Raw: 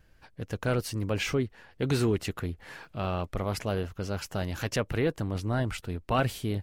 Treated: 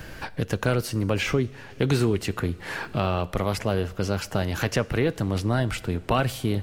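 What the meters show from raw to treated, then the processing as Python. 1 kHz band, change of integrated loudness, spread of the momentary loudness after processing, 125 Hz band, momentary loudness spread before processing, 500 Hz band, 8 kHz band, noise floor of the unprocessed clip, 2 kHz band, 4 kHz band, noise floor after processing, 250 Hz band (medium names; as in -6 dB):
+5.0 dB, +4.5 dB, 6 LU, +5.0 dB, 9 LU, +4.5 dB, +4.0 dB, -60 dBFS, +5.5 dB, +5.0 dB, -44 dBFS, +5.0 dB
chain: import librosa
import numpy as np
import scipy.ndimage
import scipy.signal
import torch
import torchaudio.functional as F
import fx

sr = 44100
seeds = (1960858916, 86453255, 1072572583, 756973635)

y = fx.rev_double_slope(x, sr, seeds[0], early_s=0.58, late_s=3.9, knee_db=-18, drr_db=16.5)
y = fx.band_squash(y, sr, depth_pct=70)
y = F.gain(torch.from_numpy(y), 4.5).numpy()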